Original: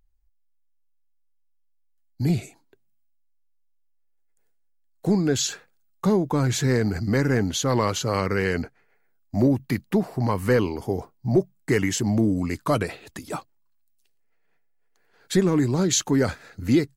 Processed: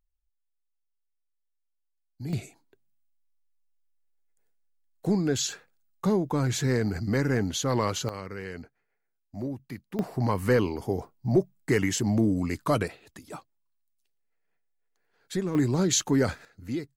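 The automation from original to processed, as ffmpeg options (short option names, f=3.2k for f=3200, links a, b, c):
-af "asetnsamples=n=441:p=0,asendcmd='2.33 volume volume -4dB;8.09 volume volume -14dB;9.99 volume volume -2.5dB;12.88 volume volume -9.5dB;15.55 volume volume -2.5dB;16.45 volume volume -12.5dB',volume=-12.5dB"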